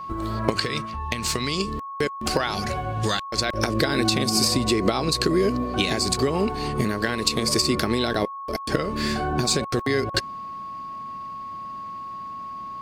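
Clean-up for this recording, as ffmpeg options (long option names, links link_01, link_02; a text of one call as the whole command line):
ffmpeg -i in.wav -af "bandreject=frequency=1100:width=30" out.wav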